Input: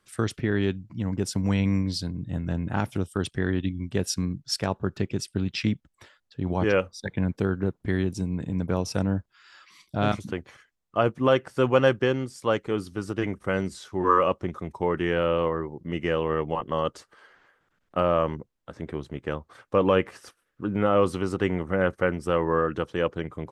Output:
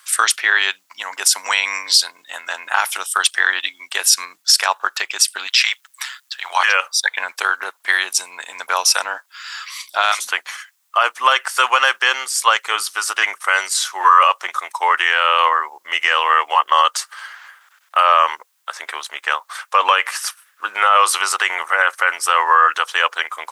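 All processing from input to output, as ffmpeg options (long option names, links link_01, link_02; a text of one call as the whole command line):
ffmpeg -i in.wav -filter_complex "[0:a]asettb=1/sr,asplit=3[link_01][link_02][link_03];[link_01]atrim=end=5.474[link_04];[link_02]atrim=start=5.47:end=6.69,asetpts=PTS-STARTPTS,afade=type=in:duration=0.004:curve=qsin,afade=type=out:start_time=1.216:duration=0.004:curve=qsin,highpass=980,acontrast=59,tremolo=f=130:d=0.519[link_05];[link_03]atrim=start=6.686[link_06];[link_04][link_05]acrossfade=duration=0.004:curve1=hsin:curve2=qsin[link_07];[link_07][link_06]acrossfade=duration=0.004:curve1=qsin:curve2=hsin,highpass=frequency=970:width=0.5412,highpass=frequency=970:width=1.3066,highshelf=frequency=6700:gain=11,alimiter=level_in=21dB:limit=-1dB:release=50:level=0:latency=1,volume=-1dB" out.wav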